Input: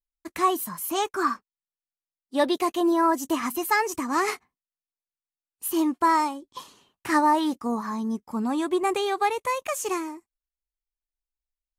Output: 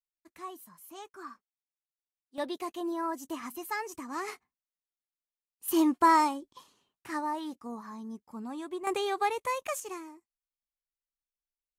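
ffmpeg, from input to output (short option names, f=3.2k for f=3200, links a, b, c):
-af "asetnsamples=n=441:p=0,asendcmd='2.38 volume volume -12dB;5.68 volume volume -1dB;6.53 volume volume -13dB;8.87 volume volume -5dB;9.8 volume volume -12.5dB',volume=-20dB"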